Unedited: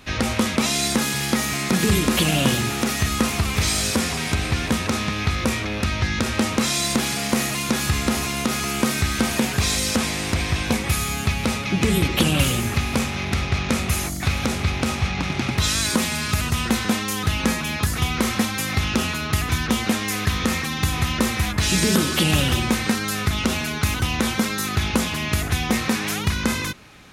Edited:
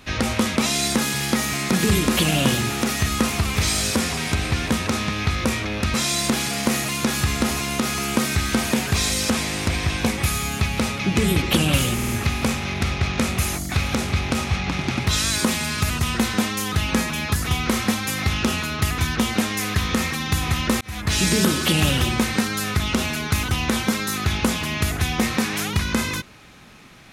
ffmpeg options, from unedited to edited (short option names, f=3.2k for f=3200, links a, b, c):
-filter_complex "[0:a]asplit=6[a][b][c][d][e][f];[a]atrim=end=5.942[g];[b]atrim=start=6.598:end=12.652[h];[c]atrim=start=12.598:end=12.652[i];[d]atrim=start=12.598:end=12.652[j];[e]atrim=start=12.598:end=21.32,asetpts=PTS-STARTPTS,afade=t=out:st=8.718:d=0.004:c=hsin[k];[f]atrim=start=21.32,asetpts=PTS-STARTPTS,afade=t=in:d=0.31[l];[g][h]acrossfade=d=0.004:c1=hsin:c2=hsin[m];[m][i]acrossfade=d=0.004:c1=hsin:c2=hsin[n];[n][j]acrossfade=d=0.004:c1=hsin:c2=hsin[o];[k][l]concat=n=2:v=0:a=1[p];[o][p]acrossfade=d=0.004:c1=hsin:c2=hsin"